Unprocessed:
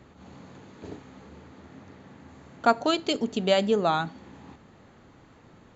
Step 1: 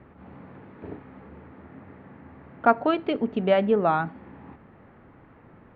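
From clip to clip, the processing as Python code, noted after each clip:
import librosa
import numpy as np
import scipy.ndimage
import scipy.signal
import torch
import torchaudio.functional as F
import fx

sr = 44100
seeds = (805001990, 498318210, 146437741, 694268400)

y = scipy.signal.sosfilt(scipy.signal.butter(4, 2300.0, 'lowpass', fs=sr, output='sos'), x)
y = F.gain(torch.from_numpy(y), 2.0).numpy()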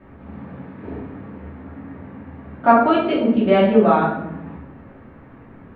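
y = fx.room_shoebox(x, sr, seeds[0], volume_m3=230.0, walls='mixed', distance_m=2.7)
y = F.gain(torch.from_numpy(y), -2.0).numpy()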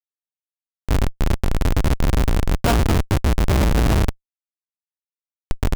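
y = fx.octave_divider(x, sr, octaves=2, level_db=4.0)
y = fx.recorder_agc(y, sr, target_db=-7.0, rise_db_per_s=15.0, max_gain_db=30)
y = fx.schmitt(y, sr, flips_db=-9.5)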